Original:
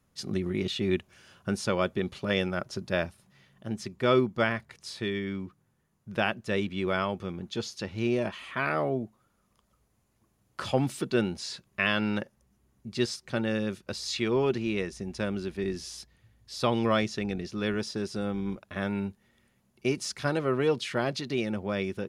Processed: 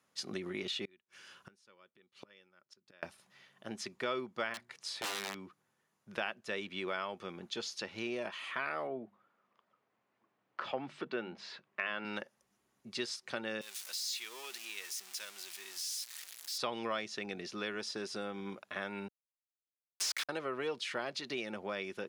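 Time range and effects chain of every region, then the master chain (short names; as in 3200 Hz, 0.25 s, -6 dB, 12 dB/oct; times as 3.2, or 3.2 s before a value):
0.85–3.03 bell 690 Hz -8.5 dB 0.42 oct + flipped gate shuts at -29 dBFS, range -32 dB
4.54–5.39 notches 60/120/180/240/300/360 Hz + wrapped overs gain 26.5 dB
8.87–12.05 BPF 110–2400 Hz + notches 50/100/150/200 Hz
13.61–16.58 zero-crossing step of -32.5 dBFS + HPF 120 Hz + differentiator
19.08–20.29 negative-ratio compressor -35 dBFS, ratio -0.5 + Chebyshev high-pass 1100 Hz, order 8 + companded quantiser 2-bit
whole clip: weighting filter A; compressor 2.5:1, threshold -37 dBFS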